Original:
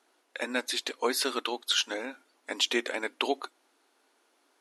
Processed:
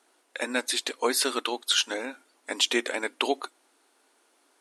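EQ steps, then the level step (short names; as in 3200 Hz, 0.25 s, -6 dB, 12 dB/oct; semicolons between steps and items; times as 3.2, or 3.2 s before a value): bell 8700 Hz +7.5 dB 0.44 oct; +2.5 dB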